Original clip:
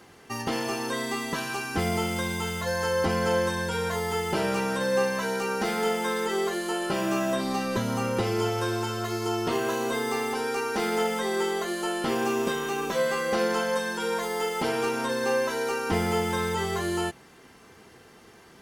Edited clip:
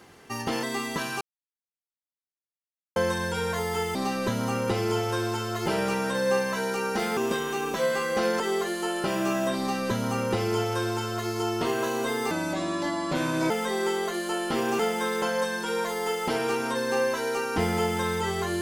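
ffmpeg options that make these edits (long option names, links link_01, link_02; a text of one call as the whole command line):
ffmpeg -i in.wav -filter_complex "[0:a]asplit=12[link_01][link_02][link_03][link_04][link_05][link_06][link_07][link_08][link_09][link_10][link_11][link_12];[link_01]atrim=end=0.632[link_13];[link_02]atrim=start=0.998:end=1.58,asetpts=PTS-STARTPTS,afade=type=out:start_time=0.578:duration=0.004:curve=hsin[link_14];[link_03]atrim=start=1.58:end=3.33,asetpts=PTS-STARTPTS,volume=0[link_15];[link_04]atrim=start=3.33:end=4.322,asetpts=PTS-STARTPTS,afade=type=in:duration=0.004:curve=hsin[link_16];[link_05]atrim=start=7.438:end=9.152[link_17];[link_06]atrim=start=4.318:end=5.832[link_18];[link_07]atrim=start=12.328:end=13.562[link_19];[link_08]atrim=start=6.258:end=10.174[link_20];[link_09]atrim=start=10.17:end=11.04,asetpts=PTS-STARTPTS,asetrate=32193,aresample=44100[link_21];[link_10]atrim=start=11.036:end=12.332[link_22];[link_11]atrim=start=5.828:end=6.262[link_23];[link_12]atrim=start=13.558[link_24];[link_14][link_15][link_16]concat=n=3:v=0:a=1[link_25];[link_13][link_25]acrossfade=duration=0.004:curve1=hsin:curve2=hsin[link_26];[link_26][link_17]acrossfade=duration=0.004:curve1=hsin:curve2=hsin[link_27];[link_27][link_18]acrossfade=duration=0.004:curve1=hsin:curve2=hsin[link_28];[link_28][link_19]acrossfade=duration=0.004:curve1=hsin:curve2=hsin[link_29];[link_29][link_20]acrossfade=duration=0.004:curve1=hsin:curve2=hsin[link_30];[link_30][link_21]acrossfade=duration=0.004:curve1=hsin:curve2=hsin[link_31];[link_31][link_22]acrossfade=duration=0.004:curve1=hsin:curve2=hsin[link_32];[link_32][link_23]acrossfade=duration=0.004:curve1=hsin:curve2=hsin[link_33];[link_33][link_24]acrossfade=duration=0.004:curve1=hsin:curve2=hsin" out.wav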